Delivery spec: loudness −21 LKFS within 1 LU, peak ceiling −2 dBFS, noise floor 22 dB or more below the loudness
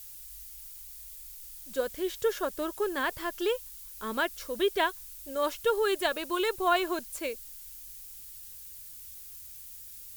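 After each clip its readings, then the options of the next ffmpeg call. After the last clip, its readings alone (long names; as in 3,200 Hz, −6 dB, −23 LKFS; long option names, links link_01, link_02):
background noise floor −46 dBFS; target noise floor −53 dBFS; integrated loudness −30.5 LKFS; sample peak −13.5 dBFS; target loudness −21.0 LKFS
→ -af "afftdn=noise_reduction=7:noise_floor=-46"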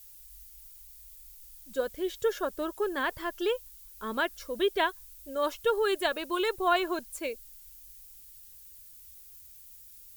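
background noise floor −52 dBFS; target noise floor −53 dBFS
→ -af "afftdn=noise_reduction=6:noise_floor=-52"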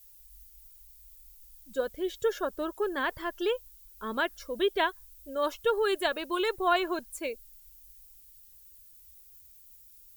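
background noise floor −55 dBFS; integrated loudness −31.0 LKFS; sample peak −14.0 dBFS; target loudness −21.0 LKFS
→ -af "volume=10dB"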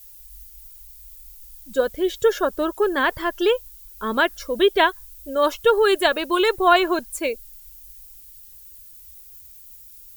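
integrated loudness −21.0 LKFS; sample peak −4.0 dBFS; background noise floor −45 dBFS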